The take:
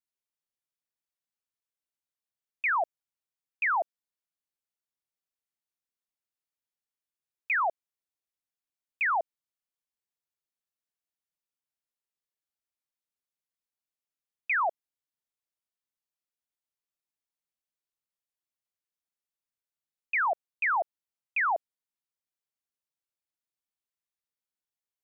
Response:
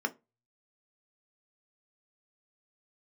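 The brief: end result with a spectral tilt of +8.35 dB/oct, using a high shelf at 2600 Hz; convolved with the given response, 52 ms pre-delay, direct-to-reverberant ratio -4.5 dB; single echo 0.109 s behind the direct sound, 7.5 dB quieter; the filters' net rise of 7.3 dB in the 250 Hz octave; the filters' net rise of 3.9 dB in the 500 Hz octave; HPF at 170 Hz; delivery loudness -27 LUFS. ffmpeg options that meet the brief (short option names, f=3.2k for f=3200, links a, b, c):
-filter_complex "[0:a]highpass=170,equalizer=f=250:t=o:g=9,equalizer=f=500:t=o:g=4.5,highshelf=f=2.6k:g=4.5,aecho=1:1:109:0.422,asplit=2[a][b];[1:a]atrim=start_sample=2205,adelay=52[c];[b][c]afir=irnorm=-1:irlink=0,volume=-1.5dB[d];[a][d]amix=inputs=2:normalize=0,volume=-5.5dB"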